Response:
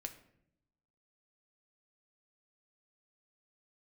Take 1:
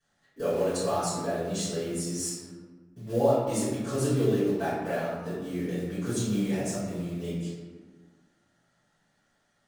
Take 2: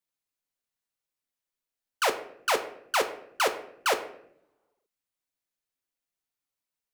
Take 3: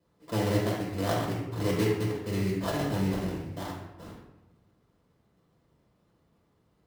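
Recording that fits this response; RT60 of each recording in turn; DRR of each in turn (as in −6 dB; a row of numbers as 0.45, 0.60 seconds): 2; 1.5, 0.75, 1.0 seconds; −16.5, 5.5, −5.5 decibels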